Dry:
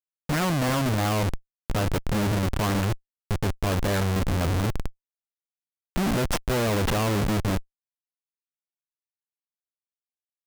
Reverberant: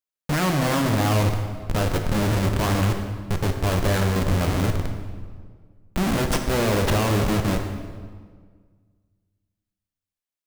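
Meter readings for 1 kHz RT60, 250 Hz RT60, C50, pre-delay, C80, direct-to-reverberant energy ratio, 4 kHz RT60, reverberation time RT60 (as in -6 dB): 1.6 s, 2.0 s, 6.0 dB, 17 ms, 7.0 dB, 4.5 dB, 1.2 s, 1.7 s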